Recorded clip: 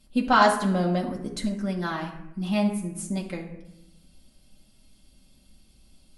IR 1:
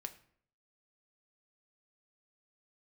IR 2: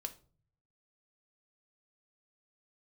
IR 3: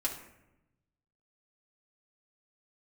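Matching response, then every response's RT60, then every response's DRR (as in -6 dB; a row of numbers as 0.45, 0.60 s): 3; 0.60, 0.45, 0.90 s; 7.5, 5.0, -3.5 dB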